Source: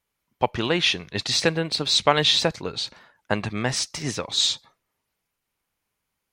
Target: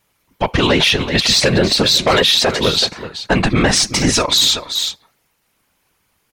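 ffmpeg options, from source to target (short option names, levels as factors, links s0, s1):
-filter_complex "[0:a]asettb=1/sr,asplit=3[s0][s1][s2];[s0]atrim=end=2.174[s3];[s1]atrim=start=2.17:end=2.59,asetpts=PTS-STARTPTS,afade=t=in:d=0.004:c=qsin,afade=t=out:st=0.416:d=0.004:c=qsin,highpass=210[s4];[s2]atrim=start=2.586[s5];[s3][s4]acrossfade=d=0.004:c1=hsin:c2=qsin[s6];[s6][s5]acrossfade=d=0.004:c1=qsin:c2=hsin,asettb=1/sr,asplit=3[s7][s8][s9];[s7]atrim=end=4.134[s10];[s8]atrim=start=4.13:end=4.54,asetpts=PTS-STARTPTS,afade=t=in:d=0.004:c=qsin,afade=t=out:st=0.406:d=0.004:c=qsin,aecho=1:1:3.1:0.98,atrim=end_sample=18081[s11];[s9]atrim=start=4.536[s12];[s10][s11]acrossfade=d=0.004:c1=hsin:c2=qsin[s13];[s13][s12]acrossfade=d=0.004:c1=qsin:c2=hsin,asoftclip=type=tanh:threshold=0.2,afftfilt=real='hypot(re,im)*cos(2*PI*random(0))':imag='hypot(re,im)*sin(2*PI*random(1))':win_size=512:overlap=0.75,aecho=1:1:377:0.2,alimiter=level_in=16.8:limit=0.891:release=50:level=0:latency=1,volume=0.708"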